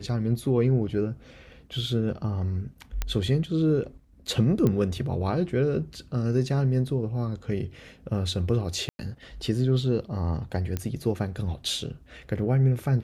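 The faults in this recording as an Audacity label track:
3.020000	3.020000	pop -13 dBFS
4.670000	4.670000	pop -13 dBFS
8.890000	8.990000	gap 0.1 s
10.770000	10.770000	pop -15 dBFS

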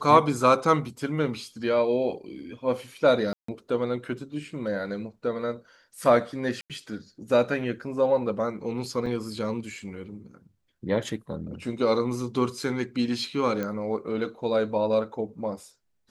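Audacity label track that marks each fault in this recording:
3.330000	3.480000	gap 0.154 s
6.610000	6.700000	gap 87 ms
9.060000	9.060000	gap 3.3 ms
13.630000	13.630000	pop -18 dBFS

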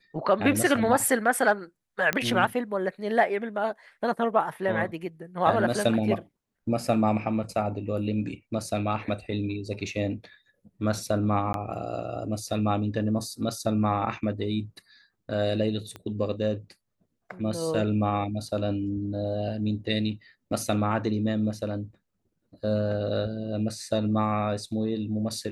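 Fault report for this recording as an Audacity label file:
2.130000	2.130000	pop -10 dBFS
11.530000	11.540000	gap 12 ms
15.960000	15.960000	pop -24 dBFS

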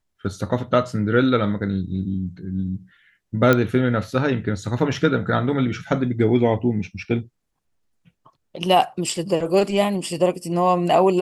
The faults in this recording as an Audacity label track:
3.530000	3.530000	pop -5 dBFS

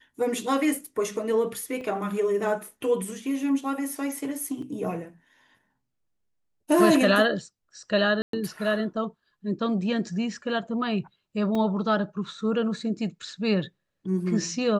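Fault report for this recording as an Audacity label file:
1.810000	1.810000	gap 2.8 ms
4.620000	4.620000	gap 3.7 ms
8.220000	8.330000	gap 0.113 s
11.550000	11.550000	gap 2.2 ms

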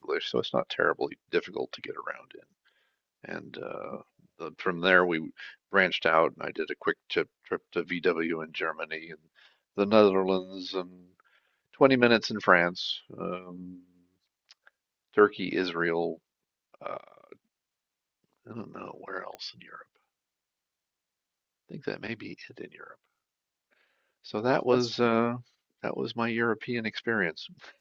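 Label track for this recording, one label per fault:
19.350000	19.350000	pop -26 dBFS

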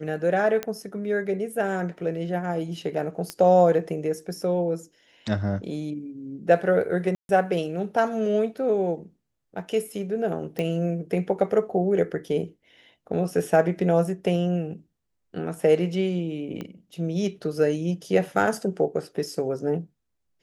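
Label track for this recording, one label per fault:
0.630000	0.630000	pop -13 dBFS
3.300000	3.300000	pop -15 dBFS
7.150000	7.290000	gap 0.141 s
10.590000	10.590000	pop -16 dBFS
16.610000	16.610000	pop -21 dBFS

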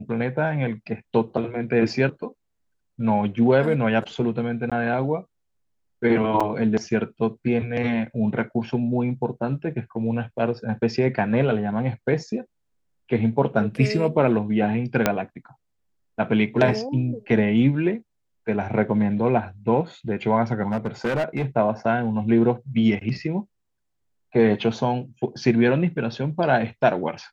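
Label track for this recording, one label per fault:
4.700000	4.720000	gap 16 ms
6.400000	6.410000	gap 5.1 ms
15.060000	15.060000	pop -3 dBFS
20.680000	21.460000	clipped -19.5 dBFS

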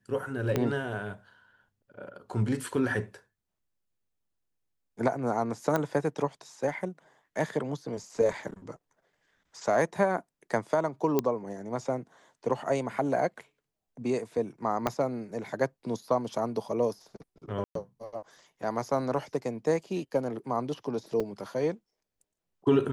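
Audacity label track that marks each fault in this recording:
0.560000	0.560000	pop -13 dBFS
5.760000	5.760000	pop -14 dBFS
11.190000	11.190000	pop -12 dBFS
14.870000	14.870000	pop -13 dBFS
17.640000	17.750000	gap 0.113 s
21.200000	21.200000	gap 4.2 ms

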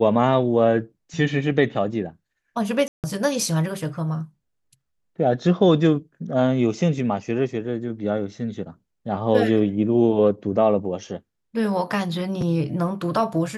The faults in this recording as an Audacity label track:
2.880000	3.040000	gap 0.158 s

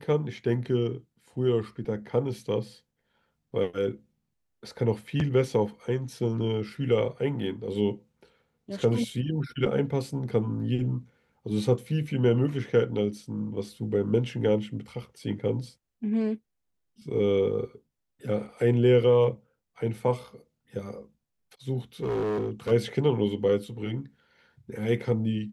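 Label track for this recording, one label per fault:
22.030000	22.720000	clipped -25 dBFS

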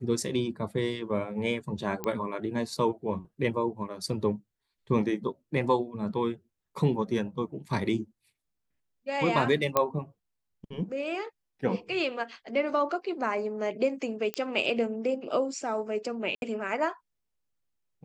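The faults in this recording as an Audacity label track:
2.040000	2.040000	pop -17 dBFS
9.770000	9.770000	pop -9 dBFS
14.340000	14.340000	pop -15 dBFS
16.350000	16.420000	gap 71 ms

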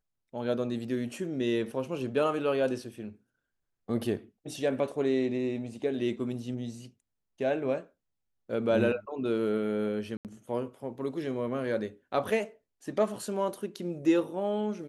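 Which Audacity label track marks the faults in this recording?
10.170000	10.250000	gap 78 ms

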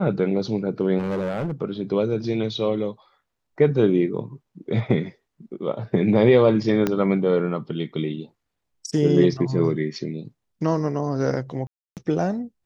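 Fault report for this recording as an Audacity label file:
0.980000	1.530000	clipped -22 dBFS
6.870000	6.870000	pop -9 dBFS
11.670000	11.970000	gap 0.298 s

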